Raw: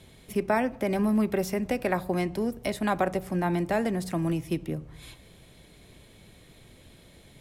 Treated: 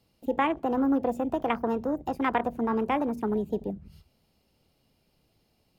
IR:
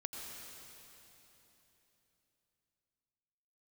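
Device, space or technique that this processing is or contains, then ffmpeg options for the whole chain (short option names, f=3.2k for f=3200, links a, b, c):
nightcore: -af "asetrate=56448,aresample=44100,afwtdn=0.0224"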